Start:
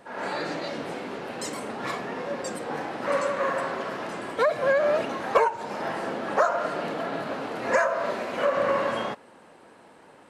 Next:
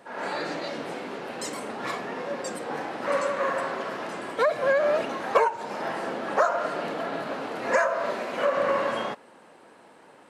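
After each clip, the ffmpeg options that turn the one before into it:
ffmpeg -i in.wav -af "highpass=frequency=160:poles=1" out.wav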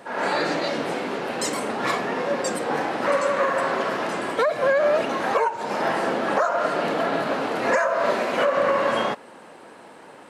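ffmpeg -i in.wav -af "alimiter=limit=-18.5dB:level=0:latency=1:release=303,volume=7.5dB" out.wav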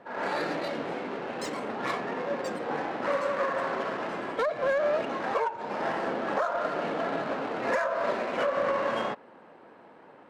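ffmpeg -i in.wav -af "adynamicsmooth=sensitivity=2.5:basefreq=2500,volume=-6.5dB" out.wav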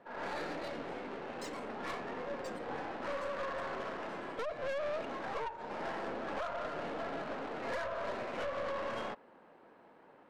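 ffmpeg -i in.wav -af "aeval=exprs='(tanh(22.4*val(0)+0.45)-tanh(0.45))/22.4':channel_layout=same,volume=-6dB" out.wav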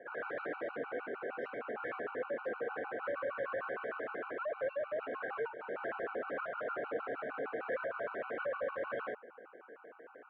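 ffmpeg -i in.wav -filter_complex "[0:a]asplit=2[link_01][link_02];[link_02]highpass=frequency=720:poles=1,volume=17dB,asoftclip=type=tanh:threshold=-30dB[link_03];[link_01][link_03]amix=inputs=2:normalize=0,lowpass=frequency=1300:poles=1,volume=-6dB,highpass=130,equalizer=frequency=190:width_type=q:width=4:gain=-7,equalizer=frequency=470:width_type=q:width=4:gain=8,equalizer=frequency=920:width_type=q:width=4:gain=-10,equalizer=frequency=1500:width_type=q:width=4:gain=8,lowpass=frequency=2700:width=0.5412,lowpass=frequency=2700:width=1.3066,afftfilt=real='re*gt(sin(2*PI*6.5*pts/sr)*(1-2*mod(floor(b*sr/1024/760),2)),0)':imag='im*gt(sin(2*PI*6.5*pts/sr)*(1-2*mod(floor(b*sr/1024/760),2)),0)':win_size=1024:overlap=0.75" out.wav

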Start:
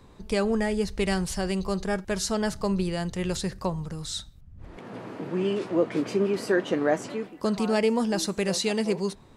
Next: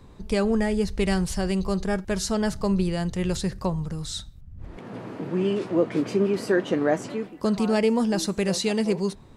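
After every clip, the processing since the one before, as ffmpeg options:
ffmpeg -i in.wav -af "lowshelf=frequency=260:gain=5.5" out.wav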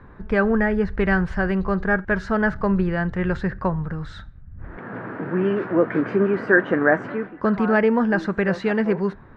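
ffmpeg -i in.wav -af "lowpass=frequency=1600:width_type=q:width=4.2,volume=2.5dB" out.wav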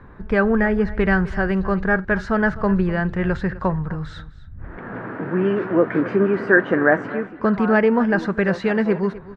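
ffmpeg -i in.wav -af "aecho=1:1:254:0.133,volume=1.5dB" out.wav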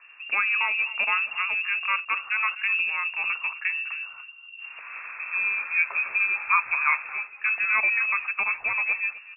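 ffmpeg -i in.wav -af "lowpass=frequency=2400:width_type=q:width=0.5098,lowpass=frequency=2400:width_type=q:width=0.6013,lowpass=frequency=2400:width_type=q:width=0.9,lowpass=frequency=2400:width_type=q:width=2.563,afreqshift=-2800,volume=-7dB" out.wav

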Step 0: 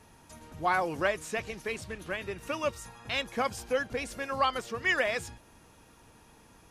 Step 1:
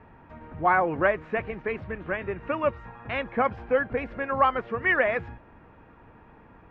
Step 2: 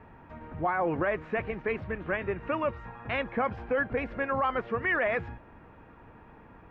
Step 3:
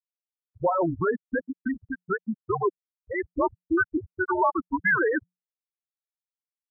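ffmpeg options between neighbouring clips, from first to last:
ffmpeg -i in.wav -af "lowpass=frequency=2100:width=0.5412,lowpass=frequency=2100:width=1.3066,volume=6dB" out.wav
ffmpeg -i in.wav -af "alimiter=limit=-19.5dB:level=0:latency=1:release=18" out.wav
ffmpeg -i in.wav -af "afftfilt=real='re*gte(hypot(re,im),0.158)':imag='im*gte(hypot(re,im),0.158)':win_size=1024:overlap=0.75,afreqshift=-180,highpass=frequency=280:poles=1,volume=7dB" out.wav

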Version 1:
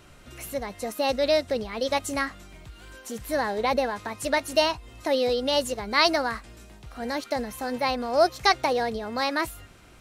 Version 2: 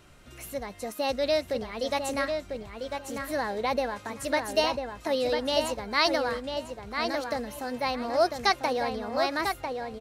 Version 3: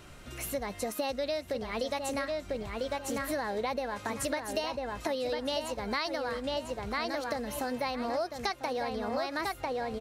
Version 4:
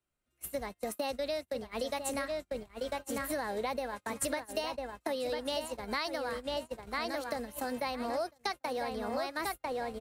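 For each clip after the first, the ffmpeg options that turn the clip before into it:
ffmpeg -i in.wav -filter_complex "[0:a]asplit=2[link_01][link_02];[link_02]adelay=997,lowpass=frequency=3100:poles=1,volume=-5dB,asplit=2[link_03][link_04];[link_04]adelay=997,lowpass=frequency=3100:poles=1,volume=0.24,asplit=2[link_05][link_06];[link_06]adelay=997,lowpass=frequency=3100:poles=1,volume=0.24[link_07];[link_01][link_03][link_05][link_07]amix=inputs=4:normalize=0,volume=-3.5dB" out.wav
ffmpeg -i in.wav -af "acompressor=threshold=-34dB:ratio=10,volume=4.5dB" out.wav
ffmpeg -i in.wav -filter_complex "[0:a]agate=range=-35dB:threshold=-35dB:ratio=16:detection=peak,equalizer=frequency=110:width_type=o:width=0.77:gain=-3.5,acrossover=split=110|480|1800[link_01][link_02][link_03][link_04];[link_04]aexciter=amount=2:drive=6.8:freq=8000[link_05];[link_01][link_02][link_03][link_05]amix=inputs=4:normalize=0,volume=-2dB" out.wav

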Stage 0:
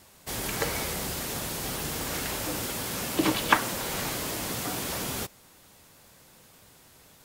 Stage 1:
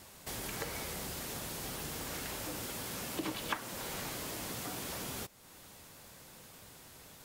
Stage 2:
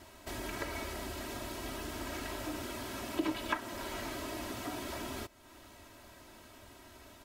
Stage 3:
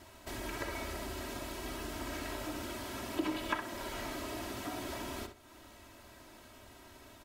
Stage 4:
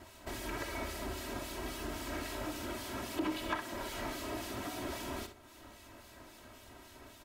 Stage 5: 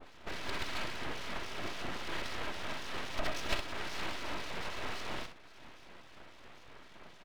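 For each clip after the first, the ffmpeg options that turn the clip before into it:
ffmpeg -i in.wav -af "acompressor=threshold=-47dB:ratio=2,volume=1dB" out.wav
ffmpeg -i in.wav -af "highshelf=frequency=4300:gain=-11.5,aecho=1:1:3.1:0.82,volume=1dB" out.wav
ffmpeg -i in.wav -filter_complex "[0:a]asplit=2[link_01][link_02];[link_02]adelay=64,lowpass=frequency=4500:poles=1,volume=-7.5dB,asplit=2[link_03][link_04];[link_04]adelay=64,lowpass=frequency=4500:poles=1,volume=0.25,asplit=2[link_05][link_06];[link_06]adelay=64,lowpass=frequency=4500:poles=1,volume=0.25[link_07];[link_01][link_03][link_05][link_07]amix=inputs=4:normalize=0,volume=-1dB" out.wav
ffmpeg -i in.wav -filter_complex "[0:a]asoftclip=type=tanh:threshold=-28dB,acrossover=split=2300[link_01][link_02];[link_01]aeval=exprs='val(0)*(1-0.5/2+0.5/2*cos(2*PI*3.7*n/s))':channel_layout=same[link_03];[link_02]aeval=exprs='val(0)*(1-0.5/2-0.5/2*cos(2*PI*3.7*n/s))':channel_layout=same[link_04];[link_03][link_04]amix=inputs=2:normalize=0,volume=3dB" out.wav
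ffmpeg -i in.wav -af "adynamicequalizer=threshold=0.00178:dfrequency=2100:dqfactor=1:tfrequency=2100:tqfactor=1:attack=5:release=100:ratio=0.375:range=2.5:mode=boostabove:tftype=bell,aresample=8000,aresample=44100,aeval=exprs='abs(val(0))':channel_layout=same,volume=3dB" out.wav

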